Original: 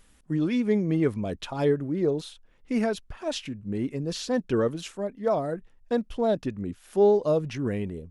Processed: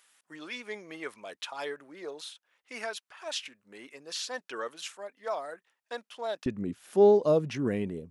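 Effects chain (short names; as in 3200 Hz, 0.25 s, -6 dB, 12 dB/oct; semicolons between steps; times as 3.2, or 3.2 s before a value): HPF 1000 Hz 12 dB/oct, from 6.46 s 140 Hz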